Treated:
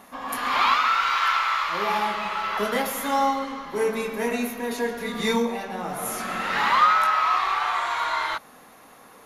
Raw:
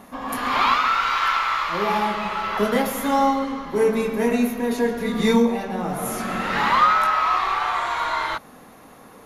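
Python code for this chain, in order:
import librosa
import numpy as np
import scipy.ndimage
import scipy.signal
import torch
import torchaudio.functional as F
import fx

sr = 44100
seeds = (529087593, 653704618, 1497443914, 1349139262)

y = fx.low_shelf(x, sr, hz=470.0, db=-10.0)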